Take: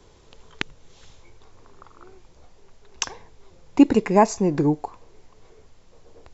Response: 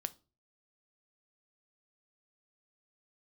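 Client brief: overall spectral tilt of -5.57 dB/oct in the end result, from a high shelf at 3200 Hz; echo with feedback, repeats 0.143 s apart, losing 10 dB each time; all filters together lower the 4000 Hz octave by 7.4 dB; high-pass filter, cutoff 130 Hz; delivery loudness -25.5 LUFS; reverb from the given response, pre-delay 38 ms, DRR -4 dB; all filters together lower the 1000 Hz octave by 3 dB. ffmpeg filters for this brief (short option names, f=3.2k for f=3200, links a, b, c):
-filter_complex "[0:a]highpass=130,equalizer=f=1k:t=o:g=-3,highshelf=f=3.2k:g=-6.5,equalizer=f=4k:t=o:g=-5.5,aecho=1:1:143|286|429|572:0.316|0.101|0.0324|0.0104,asplit=2[a][b];[1:a]atrim=start_sample=2205,adelay=38[c];[b][c]afir=irnorm=-1:irlink=0,volume=5dB[d];[a][d]amix=inputs=2:normalize=0,volume=-10dB"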